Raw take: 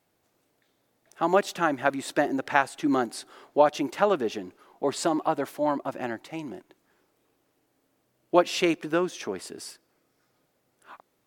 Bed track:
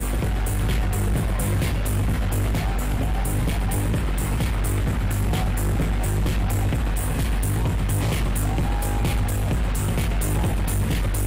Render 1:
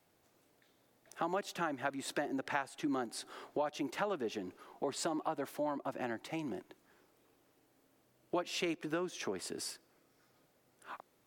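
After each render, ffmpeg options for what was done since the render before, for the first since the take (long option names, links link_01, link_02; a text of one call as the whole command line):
ffmpeg -i in.wav -filter_complex "[0:a]acrossover=split=300|590|5300[link_01][link_02][link_03][link_04];[link_02]alimiter=limit=-23.5dB:level=0:latency=1[link_05];[link_01][link_05][link_03][link_04]amix=inputs=4:normalize=0,acompressor=threshold=-37dB:ratio=3" out.wav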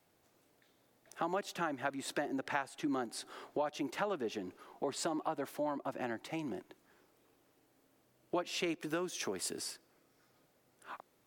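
ffmpeg -i in.wav -filter_complex "[0:a]asettb=1/sr,asplit=3[link_01][link_02][link_03];[link_01]atrim=end=8.804[link_04];[link_02]atrim=start=8.8:end=9.59,asetpts=PTS-STARTPTS,afade=type=in:duration=0.004:curve=qsin,afade=type=out:start_time=0.786:duration=0.004:curve=qsin,aemphasis=mode=production:type=cd[link_05];[link_03]atrim=start=9.586[link_06];[link_04][link_05]acrossfade=duration=0.004:curve1=hsin:curve2=qsin[link_07];[link_07][link_06]acrossfade=duration=0.004:curve1=qsin:curve2=hsin" out.wav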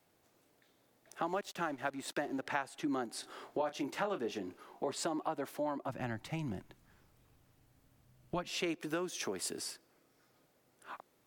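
ffmpeg -i in.wav -filter_complex "[0:a]asettb=1/sr,asplit=3[link_01][link_02][link_03];[link_01]atrim=end=1.264[link_04];[link_02]atrim=start=1.26:end=2.42,asetpts=PTS-STARTPTS,afade=type=in:duration=0.004:curve=qsin,afade=type=out:start_time=1.156:duration=0.004:curve=qsin,aeval=exprs='sgn(val(0))*max(abs(val(0))-0.0015,0)':channel_layout=same[link_05];[link_03]atrim=start=2.416[link_06];[link_04][link_05]acrossfade=duration=0.004:curve1=hsin:curve2=qsin[link_07];[link_07][link_06]acrossfade=duration=0.004:curve1=qsin:curve2=hsin,asettb=1/sr,asplit=3[link_08][link_09][link_10];[link_08]atrim=end=3.204[link_11];[link_09]atrim=start=3.2:end=4.92,asetpts=PTS-STARTPTS,afade=type=in:duration=0.004:curve=qsin,afade=type=out:start_time=1.716:duration=0.004:curve=qsin,asplit=2[link_12][link_13];[link_13]adelay=30,volume=-10dB[link_14];[link_12][link_14]amix=inputs=2:normalize=0,atrim=end_sample=75852[link_15];[link_10]atrim=start=4.916[link_16];[link_11][link_15]acrossfade=duration=0.004:curve1=hsin:curve2=qsin[link_17];[link_17][link_16]acrossfade=duration=0.004:curve1=qsin:curve2=hsin,asplit=3[link_18][link_19][link_20];[link_18]afade=type=out:start_time=5.88:duration=0.02[link_21];[link_19]asubboost=boost=11:cutoff=110,afade=type=in:start_time=5.88:duration=0.02,afade=type=out:start_time=8.5:duration=0.02[link_22];[link_20]afade=type=in:start_time=8.5:duration=0.02[link_23];[link_21][link_22][link_23]amix=inputs=3:normalize=0" out.wav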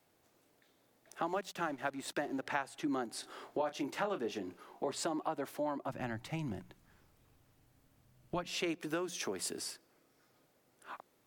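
ffmpeg -i in.wav -af "bandreject=frequency=60:width_type=h:width=6,bandreject=frequency=120:width_type=h:width=6,bandreject=frequency=180:width_type=h:width=6" out.wav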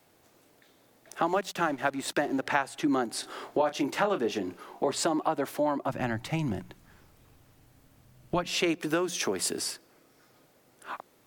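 ffmpeg -i in.wav -af "volume=9dB" out.wav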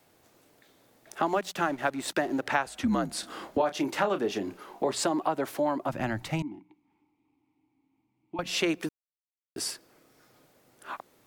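ffmpeg -i in.wav -filter_complex "[0:a]asettb=1/sr,asplit=3[link_01][link_02][link_03];[link_01]atrim=end=2.664[link_04];[link_02]atrim=start=2.66:end=3.58,asetpts=PTS-STARTPTS,afade=type=in:duration=0.004:curve=qsin,afade=type=out:start_time=0.916:duration=0.004:curve=qsin,afreqshift=-66[link_05];[link_03]atrim=start=3.576[link_06];[link_04][link_05]acrossfade=duration=0.004:curve1=hsin:curve2=qsin[link_07];[link_07][link_06]acrossfade=duration=0.004:curve1=qsin:curve2=hsin,asettb=1/sr,asplit=3[link_08][link_09][link_10];[link_08]atrim=end=6.424[link_11];[link_09]atrim=start=6.42:end=8.39,asetpts=PTS-STARTPTS,afade=type=in:duration=0.004:curve=qsin,afade=type=out:start_time=1.966:duration=0.004:curve=qsin,asplit=3[link_12][link_13][link_14];[link_12]bandpass=frequency=300:width_type=q:width=8,volume=0dB[link_15];[link_13]bandpass=frequency=870:width_type=q:width=8,volume=-6dB[link_16];[link_14]bandpass=frequency=2240:width_type=q:width=8,volume=-9dB[link_17];[link_15][link_16][link_17]amix=inputs=3:normalize=0[link_18];[link_10]atrim=start=8.386[link_19];[link_11][link_18]acrossfade=duration=0.004:curve1=hsin:curve2=qsin[link_20];[link_20][link_19]acrossfade=duration=0.004:curve1=qsin:curve2=hsin,asplit=3[link_21][link_22][link_23];[link_21]atrim=end=8.89,asetpts=PTS-STARTPTS,afade=type=out:start_time=8.886:duration=0.004:curve=hsin[link_24];[link_22]atrim=start=8.89:end=9.56,asetpts=PTS-STARTPTS,volume=0[link_25];[link_23]atrim=start=9.56,asetpts=PTS-STARTPTS,afade=type=in:duration=0.004:curve=hsin[link_26];[link_24][link_25][link_26]concat=n=3:v=0:a=1" out.wav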